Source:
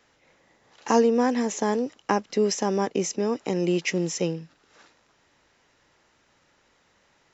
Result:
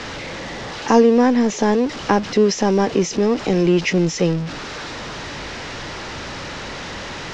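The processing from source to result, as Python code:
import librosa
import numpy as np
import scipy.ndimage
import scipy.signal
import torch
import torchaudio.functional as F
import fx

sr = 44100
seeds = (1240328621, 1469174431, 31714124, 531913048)

y = x + 0.5 * 10.0 ** (-29.5 / 20.0) * np.sign(x)
y = scipy.signal.sosfilt(scipy.signal.butter(4, 5800.0, 'lowpass', fs=sr, output='sos'), y)
y = fx.low_shelf(y, sr, hz=250.0, db=5.5)
y = y * librosa.db_to_amplitude(4.5)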